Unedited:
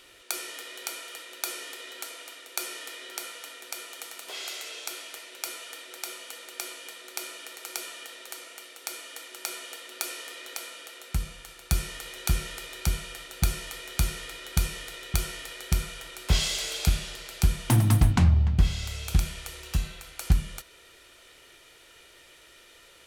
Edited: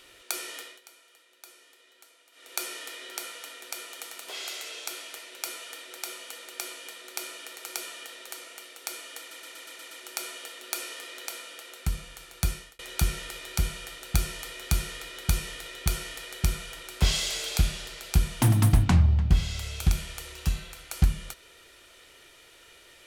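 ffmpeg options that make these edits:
ffmpeg -i in.wav -filter_complex "[0:a]asplit=10[link_01][link_02][link_03][link_04][link_05][link_06][link_07][link_08][link_09][link_10];[link_01]atrim=end=0.81,asetpts=PTS-STARTPTS,afade=type=out:start_time=0.59:duration=0.22:silence=0.133352[link_11];[link_02]atrim=start=0.81:end=2.32,asetpts=PTS-STARTPTS,volume=-17.5dB[link_12];[link_03]atrim=start=2.32:end=9.312,asetpts=PTS-STARTPTS,afade=type=in:duration=0.22:silence=0.133352[link_13];[link_04]atrim=start=9.188:end=9.312[link_14];[link_05]atrim=start=9.188:end=9.312[link_15];[link_06]atrim=start=9.188:end=9.312[link_16];[link_07]atrim=start=9.188:end=9.312[link_17];[link_08]atrim=start=9.188:end=9.312[link_18];[link_09]atrim=start=9.188:end=12.07,asetpts=PTS-STARTPTS,afade=type=out:start_time=2.492:duration=0.39[link_19];[link_10]atrim=start=12.07,asetpts=PTS-STARTPTS,afade=type=in:duration=0.004:curve=hsin[link_20];[link_11][link_12][link_13]concat=n=3:v=0:a=1[link_21];[link_21][link_14]acrossfade=duration=0.004:curve1=hsin:curve2=hsin[link_22];[link_22][link_15]acrossfade=duration=0.004:curve1=hsin:curve2=hsin[link_23];[link_23][link_16]acrossfade=duration=0.004:curve1=hsin:curve2=hsin[link_24];[link_24][link_17]acrossfade=duration=0.004:curve1=hsin:curve2=hsin[link_25];[link_25][link_18]acrossfade=duration=0.004:curve1=hsin:curve2=hsin[link_26];[link_19][link_20]concat=n=2:v=0:a=1[link_27];[link_26][link_27]acrossfade=duration=0.004:curve1=hsin:curve2=hsin" out.wav

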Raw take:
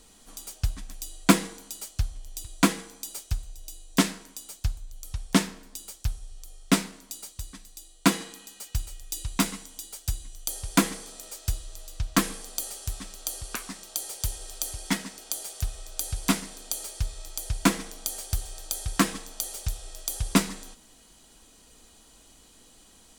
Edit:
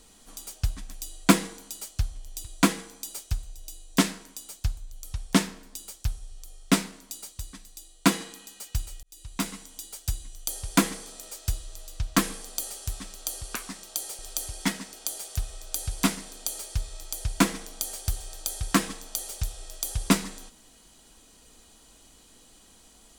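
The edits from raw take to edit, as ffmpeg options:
ffmpeg -i in.wav -filter_complex "[0:a]asplit=3[link_01][link_02][link_03];[link_01]atrim=end=9.03,asetpts=PTS-STARTPTS,afade=type=out:start_time=9.026:duration=0.004:curve=hsin[link_04];[link_02]atrim=start=9.03:end=14.192,asetpts=PTS-STARTPTS,afade=type=in:duration=1.01:curve=qsin[link_05];[link_03]atrim=start=14.438[link_06];[link_04][link_05]concat=n=2:v=0:a=1[link_07];[link_07][link_06]acrossfade=duration=0.004:curve1=hsin:curve2=hsin" out.wav

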